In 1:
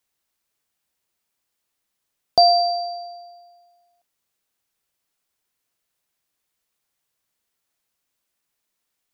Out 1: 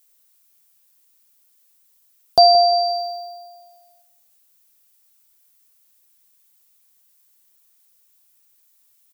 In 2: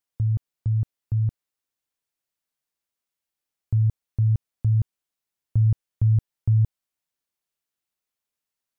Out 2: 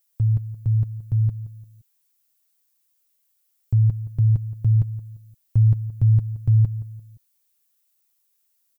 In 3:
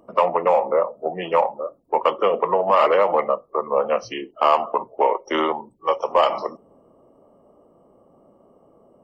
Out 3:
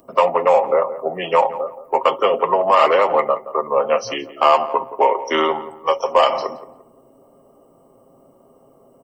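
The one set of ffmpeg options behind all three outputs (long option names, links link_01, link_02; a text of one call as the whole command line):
ffmpeg -i in.wav -filter_complex "[0:a]acrossover=split=3400[link_01][link_02];[link_02]acompressor=threshold=-38dB:ratio=4:attack=1:release=60[link_03];[link_01][link_03]amix=inputs=2:normalize=0,aemphasis=mode=production:type=75kf,aecho=1:1:7.5:0.4,asplit=2[link_04][link_05];[link_05]adelay=173,lowpass=frequency=1300:poles=1,volume=-13.5dB,asplit=2[link_06][link_07];[link_07]adelay=173,lowpass=frequency=1300:poles=1,volume=0.36,asplit=2[link_08][link_09];[link_09]adelay=173,lowpass=frequency=1300:poles=1,volume=0.36[link_10];[link_06][link_08][link_10]amix=inputs=3:normalize=0[link_11];[link_04][link_11]amix=inputs=2:normalize=0,volume=1.5dB" out.wav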